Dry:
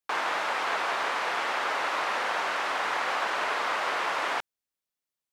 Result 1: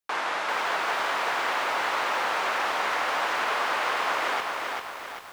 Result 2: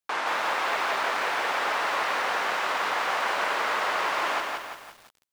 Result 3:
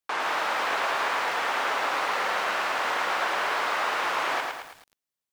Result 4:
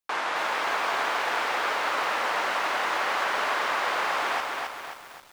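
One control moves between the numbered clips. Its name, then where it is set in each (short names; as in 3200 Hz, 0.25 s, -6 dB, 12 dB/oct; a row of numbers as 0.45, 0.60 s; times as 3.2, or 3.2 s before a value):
lo-fi delay, time: 0.393, 0.172, 0.109, 0.266 s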